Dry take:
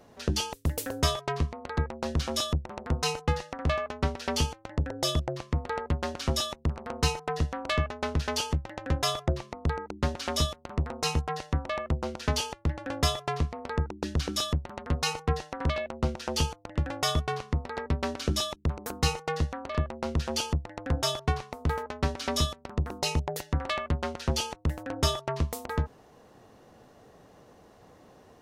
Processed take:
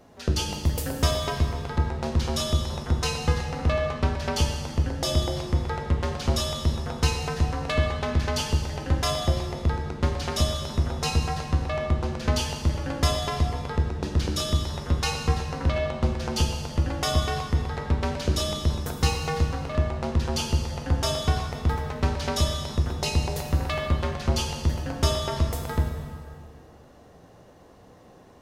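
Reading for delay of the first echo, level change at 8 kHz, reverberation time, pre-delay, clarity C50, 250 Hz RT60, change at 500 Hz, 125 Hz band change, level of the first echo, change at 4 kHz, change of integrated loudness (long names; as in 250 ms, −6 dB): no echo audible, +2.0 dB, 1.9 s, 4 ms, 4.5 dB, 1.8 s, +3.0 dB, +5.5 dB, no echo audible, +2.0 dB, +4.0 dB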